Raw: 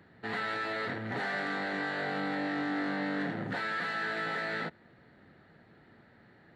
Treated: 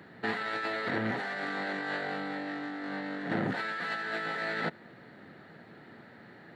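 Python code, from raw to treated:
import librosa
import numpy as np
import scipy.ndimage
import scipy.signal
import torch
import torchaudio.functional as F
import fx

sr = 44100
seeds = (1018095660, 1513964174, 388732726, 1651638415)

y = scipy.signal.sosfilt(scipy.signal.butter(2, 140.0, 'highpass', fs=sr, output='sos'), x)
y = fx.over_compress(y, sr, threshold_db=-37.0, ratio=-0.5)
y = y * librosa.db_to_amplitude(4.0)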